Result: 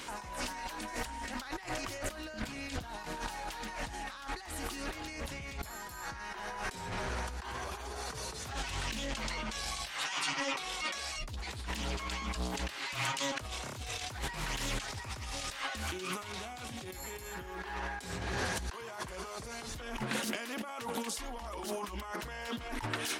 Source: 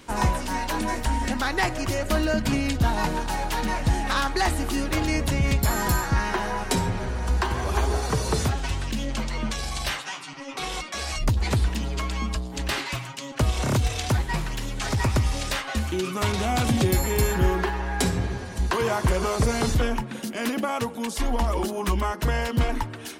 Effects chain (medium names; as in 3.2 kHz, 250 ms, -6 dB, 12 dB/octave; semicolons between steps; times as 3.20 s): bass shelf 490 Hz -12 dB; compressor with a negative ratio -40 dBFS, ratio -1; loudspeaker Doppler distortion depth 0.27 ms